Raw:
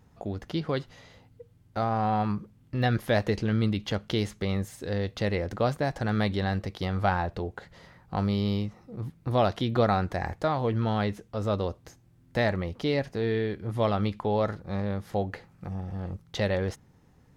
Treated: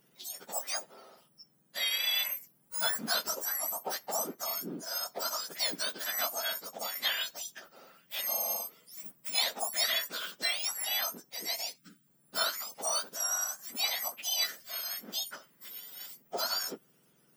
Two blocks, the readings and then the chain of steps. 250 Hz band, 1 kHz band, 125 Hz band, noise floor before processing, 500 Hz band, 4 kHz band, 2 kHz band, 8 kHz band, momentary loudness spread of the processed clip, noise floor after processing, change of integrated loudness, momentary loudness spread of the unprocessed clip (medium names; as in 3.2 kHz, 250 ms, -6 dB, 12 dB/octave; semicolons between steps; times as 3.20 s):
-21.0 dB, -9.0 dB, -33.0 dB, -60 dBFS, -14.0 dB, +8.0 dB, -1.5 dB, no reading, 13 LU, -68 dBFS, -3.0 dB, 11 LU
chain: spectrum inverted on a logarithmic axis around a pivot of 1.6 kHz; time-frequency box 11.77–12.07 s, 320–1200 Hz -22 dB